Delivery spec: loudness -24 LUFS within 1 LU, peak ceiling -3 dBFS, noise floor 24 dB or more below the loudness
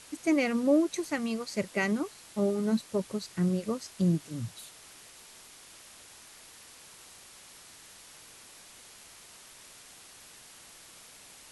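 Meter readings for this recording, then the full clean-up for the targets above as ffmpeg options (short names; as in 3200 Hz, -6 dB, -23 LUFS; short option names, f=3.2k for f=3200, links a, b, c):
noise floor -53 dBFS; noise floor target -54 dBFS; loudness -30.0 LUFS; peak -14.5 dBFS; loudness target -24.0 LUFS
-> -af "afftdn=nr=6:nf=-53"
-af "volume=6dB"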